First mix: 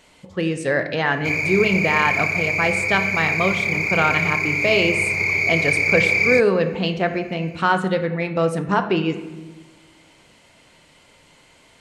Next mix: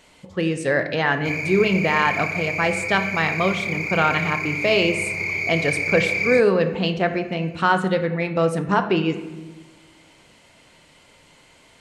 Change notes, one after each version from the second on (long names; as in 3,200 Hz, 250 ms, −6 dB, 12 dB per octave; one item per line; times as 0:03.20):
background −5.0 dB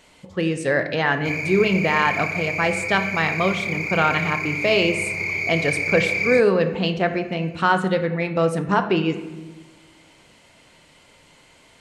nothing changed